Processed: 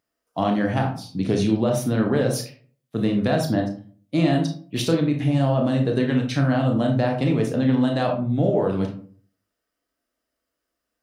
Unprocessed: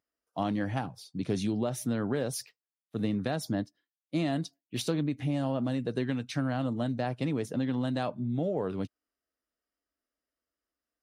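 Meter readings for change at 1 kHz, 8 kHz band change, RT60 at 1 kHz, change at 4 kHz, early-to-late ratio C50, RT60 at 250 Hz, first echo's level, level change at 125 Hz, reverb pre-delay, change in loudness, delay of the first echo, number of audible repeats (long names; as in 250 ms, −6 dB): +9.5 dB, +6.0 dB, 0.45 s, +8.5 dB, 7.0 dB, 0.55 s, no echo audible, +11.0 dB, 25 ms, +10.0 dB, no echo audible, no echo audible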